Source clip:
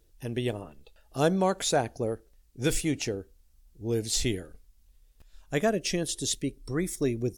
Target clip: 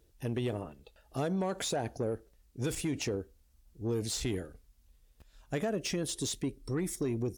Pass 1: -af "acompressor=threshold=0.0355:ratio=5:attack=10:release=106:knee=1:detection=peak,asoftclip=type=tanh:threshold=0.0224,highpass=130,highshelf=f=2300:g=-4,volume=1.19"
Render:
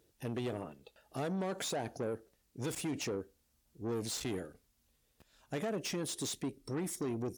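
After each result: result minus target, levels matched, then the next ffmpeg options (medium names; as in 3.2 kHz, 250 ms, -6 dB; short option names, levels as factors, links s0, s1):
saturation: distortion +8 dB; 125 Hz band -2.5 dB
-af "acompressor=threshold=0.0355:ratio=5:attack=10:release=106:knee=1:detection=peak,asoftclip=type=tanh:threshold=0.0501,highpass=130,highshelf=f=2300:g=-4,volume=1.19"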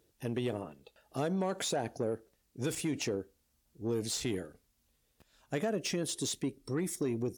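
125 Hz band -2.5 dB
-af "acompressor=threshold=0.0355:ratio=5:attack=10:release=106:knee=1:detection=peak,asoftclip=type=tanh:threshold=0.0501,highpass=43,highshelf=f=2300:g=-4,volume=1.19"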